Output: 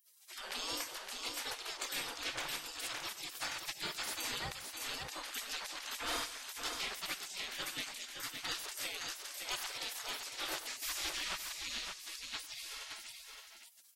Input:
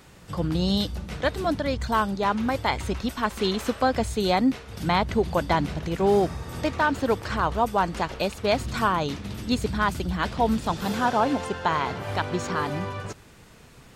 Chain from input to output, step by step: spectral gate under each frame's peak -30 dB weak; tapped delay 96/138/567 ms -17.5/-18.5/-5.5 dB; gain +3.5 dB

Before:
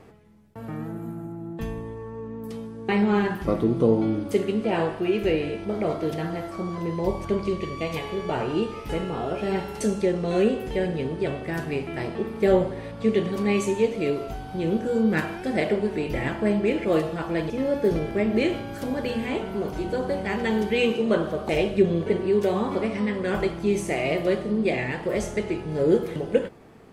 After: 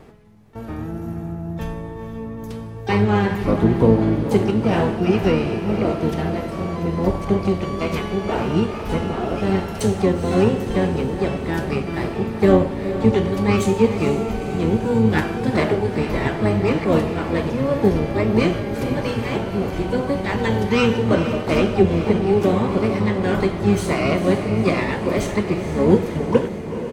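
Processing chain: harmoniser -12 st -3 dB, +12 st -14 dB; diffused feedback echo 0.466 s, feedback 61%, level -10 dB; gain +3 dB

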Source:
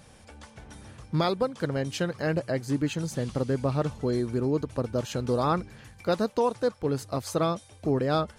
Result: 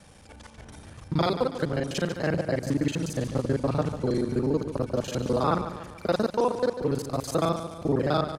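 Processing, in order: local time reversal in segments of 36 ms; feedback echo 0.145 s, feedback 49%, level -11 dB; gain +1 dB

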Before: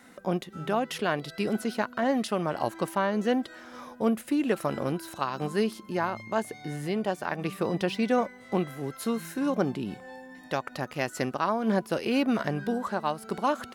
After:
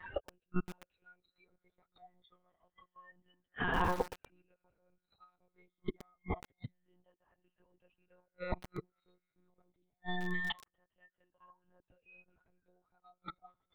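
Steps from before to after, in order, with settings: moving spectral ripple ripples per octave 1.3, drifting -0.26 Hz, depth 20 dB; dynamic EQ 280 Hz, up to -3 dB, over -40 dBFS, Q 4.7; flipped gate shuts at -27 dBFS, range -40 dB; monotone LPC vocoder at 8 kHz 180 Hz; spectral noise reduction 17 dB; lo-fi delay 0.119 s, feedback 55%, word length 7-bit, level -11.5 dB; gain +9.5 dB

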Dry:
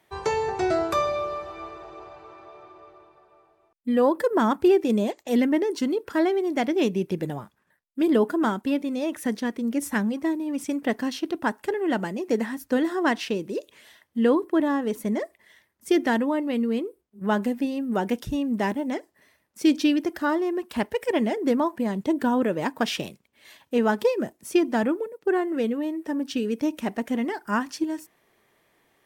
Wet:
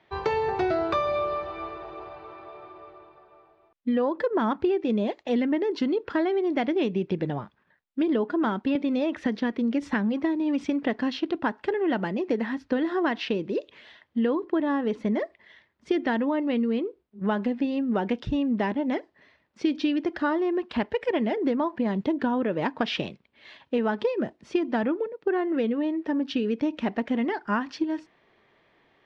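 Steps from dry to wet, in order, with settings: compressor 6:1, threshold -24 dBFS, peak gain reduction 9.5 dB; LPF 4200 Hz 24 dB/oct; 8.75–10.86 three-band squash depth 70%; gain +2.5 dB

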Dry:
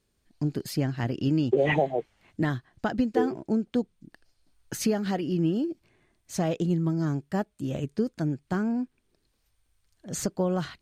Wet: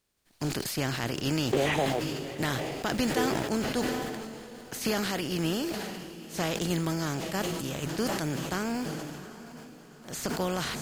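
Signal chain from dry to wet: spectral contrast lowered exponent 0.54; diffused feedback echo 0.774 s, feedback 53%, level -15 dB; sustainer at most 27 dB/s; gain -4.5 dB

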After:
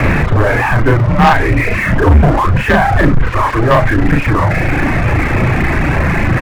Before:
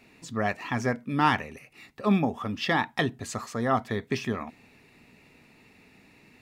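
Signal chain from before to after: delta modulation 32 kbps, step -19.5 dBFS; low shelf 230 Hz +8.5 dB; on a send at -14 dB: reverb, pre-delay 3 ms; on the sum: reverb removal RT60 1.7 s; in parallel at -3 dB: level quantiser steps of 22 dB; on the sum: doubler 37 ms -2.5 dB; frequency shift +260 Hz; de-hum 213 Hz, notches 2; mistuned SSB -380 Hz 160–2500 Hz; sample leveller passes 3; gain +2 dB

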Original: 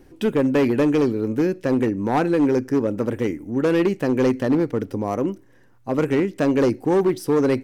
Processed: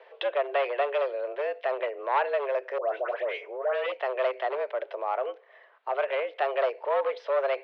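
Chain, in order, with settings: in parallel at 0 dB: compressor, threshold -30 dBFS, peak gain reduction 13.5 dB; 2.78–3.92 on the sum: dispersion highs, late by 0.12 s, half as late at 1400 Hz; limiter -16 dBFS, peak gain reduction 8 dB; mistuned SSB +130 Hz 440–3500 Hz

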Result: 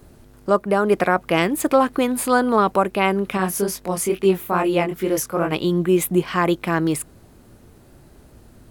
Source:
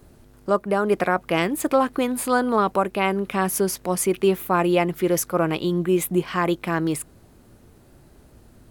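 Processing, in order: 3.37–5.52 chorus 2.3 Hz, delay 20 ms, depth 5.5 ms; gain +3 dB

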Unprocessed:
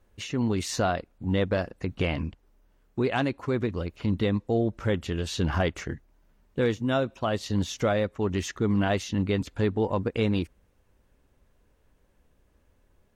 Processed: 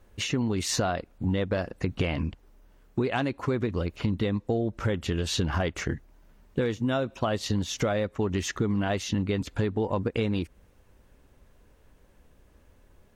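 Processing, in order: compressor, threshold -30 dBFS, peak gain reduction 10 dB; gain +6.5 dB

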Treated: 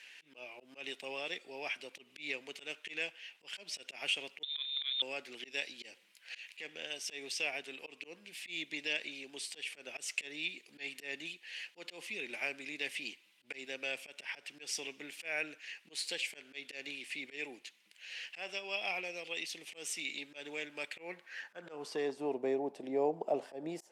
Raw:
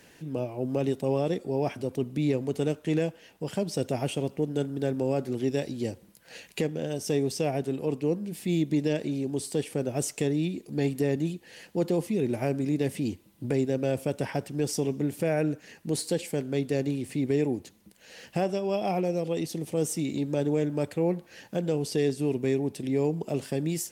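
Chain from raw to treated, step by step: HPF 200 Hz 12 dB/oct; high shelf 2300 Hz +8 dB; 4.43–5.02 inverted band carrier 3900 Hz; auto swell 0.133 s; band-pass sweep 2500 Hz -> 720 Hz, 20.93–22.41; gain +4 dB

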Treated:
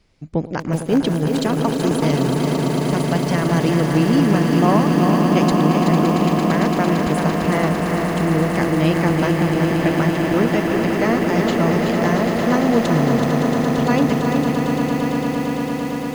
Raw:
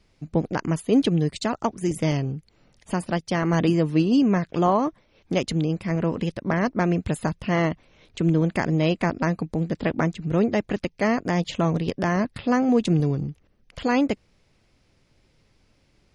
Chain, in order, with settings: swelling echo 0.113 s, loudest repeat 8, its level -9 dB; lo-fi delay 0.378 s, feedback 35%, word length 6-bit, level -5.5 dB; gain +1.5 dB

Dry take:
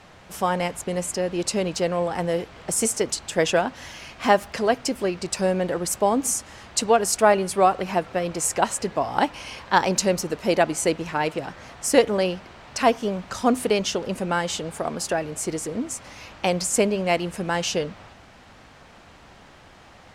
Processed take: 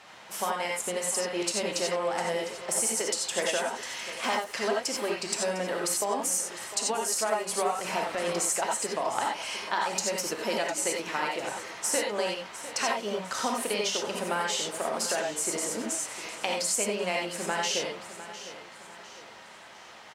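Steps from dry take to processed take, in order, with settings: HPF 820 Hz 6 dB/oct; 7.71–8.33 transient shaper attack -3 dB, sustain +7 dB; compressor 10:1, threshold -27 dBFS, peak gain reduction 13.5 dB; on a send: feedback echo 0.704 s, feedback 42%, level -14 dB; on the sum: non-linear reverb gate 0.11 s rising, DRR -0.5 dB

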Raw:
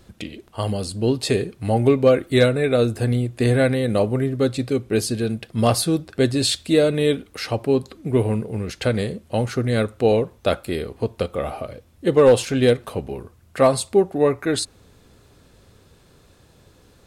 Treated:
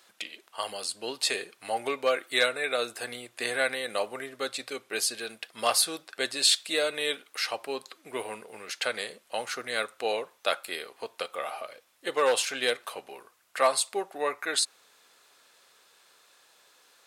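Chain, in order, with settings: HPF 990 Hz 12 dB/oct

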